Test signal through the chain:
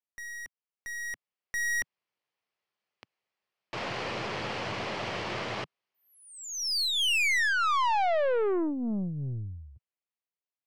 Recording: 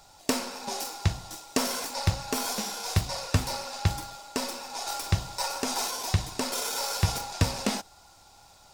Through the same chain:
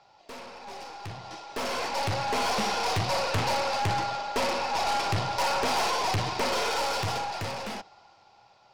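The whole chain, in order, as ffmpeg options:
-af "highpass=f=120:w=0.5412,highpass=f=120:w=1.3066,equalizer=f=160:t=q:w=4:g=-9,equalizer=f=270:t=q:w=4:g=-10,equalizer=f=1500:t=q:w=4:g=-4,equalizer=f=3700:t=q:w=4:g=-7,lowpass=f=4200:w=0.5412,lowpass=f=4200:w=1.3066,aeval=exprs='(tanh(100*val(0)+0.35)-tanh(0.35))/100':c=same,dynaudnorm=f=160:g=21:m=6.31"

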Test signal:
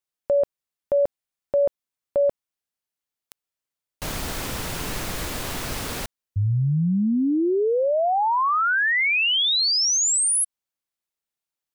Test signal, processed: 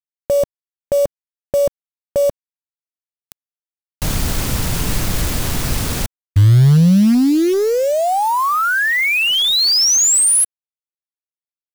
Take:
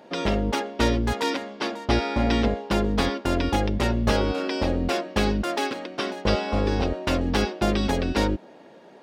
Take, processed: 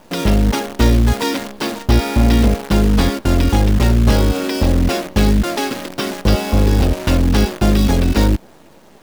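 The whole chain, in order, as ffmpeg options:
-af "bass=f=250:g=10,treble=f=4000:g=4,acontrast=70,acrusher=bits=5:dc=4:mix=0:aa=0.000001,volume=0.794"

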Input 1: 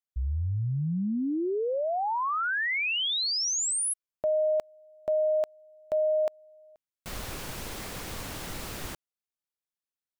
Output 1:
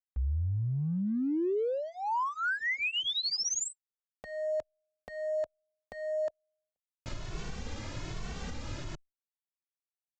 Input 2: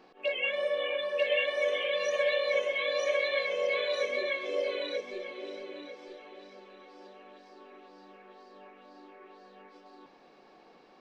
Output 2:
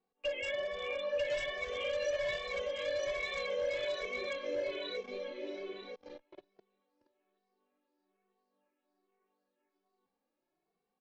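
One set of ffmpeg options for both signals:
-filter_complex "[0:a]aresample=16000,asoftclip=type=hard:threshold=0.0501,aresample=44100,lowshelf=f=210:g=10.5,alimiter=level_in=1.26:limit=0.0631:level=0:latency=1:release=167,volume=0.794,agate=range=0.0447:threshold=0.00501:ratio=16:release=25:detection=rms,asplit=2[s0][s1];[s1]adelay=2.2,afreqshift=1.2[s2];[s0][s2]amix=inputs=2:normalize=1"

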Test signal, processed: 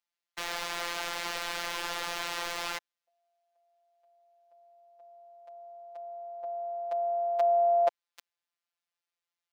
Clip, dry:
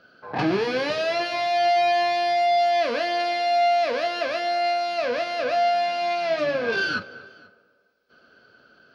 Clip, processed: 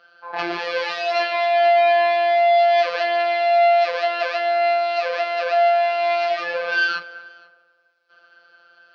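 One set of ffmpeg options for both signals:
-filter_complex "[0:a]afftfilt=real='hypot(re,im)*cos(PI*b)':imag='0':win_size=1024:overlap=0.75,acrossover=split=500 5600:gain=0.0794 1 0.224[s0][s1][s2];[s0][s1][s2]amix=inputs=3:normalize=0,volume=2.24"

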